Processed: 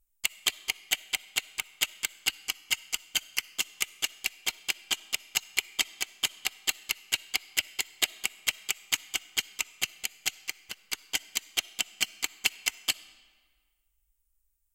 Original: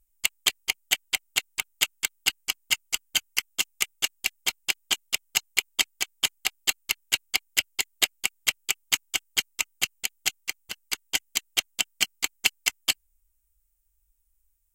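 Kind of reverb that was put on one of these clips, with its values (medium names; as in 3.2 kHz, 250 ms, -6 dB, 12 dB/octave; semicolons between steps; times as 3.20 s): algorithmic reverb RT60 1.6 s, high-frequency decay 0.8×, pre-delay 20 ms, DRR 18.5 dB; trim -4 dB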